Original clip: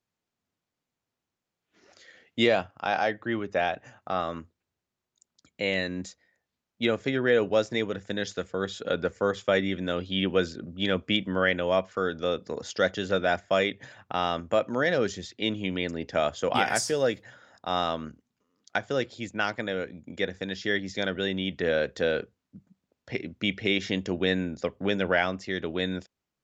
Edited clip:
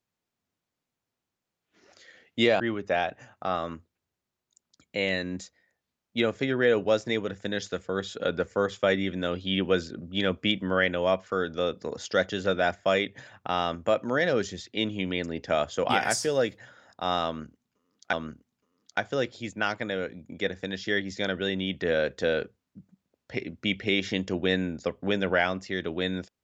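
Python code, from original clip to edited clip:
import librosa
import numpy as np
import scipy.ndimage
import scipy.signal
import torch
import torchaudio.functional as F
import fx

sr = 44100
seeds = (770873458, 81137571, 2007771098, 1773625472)

y = fx.edit(x, sr, fx.cut(start_s=2.6, length_s=0.65),
    fx.repeat(start_s=17.91, length_s=0.87, count=2), tone=tone)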